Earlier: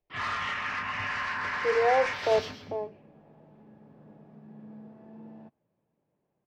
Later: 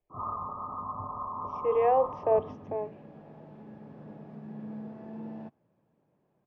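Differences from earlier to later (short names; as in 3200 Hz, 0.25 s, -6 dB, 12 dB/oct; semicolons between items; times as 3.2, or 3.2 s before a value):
first sound: add brick-wall FIR low-pass 1300 Hz; second sound +6.5 dB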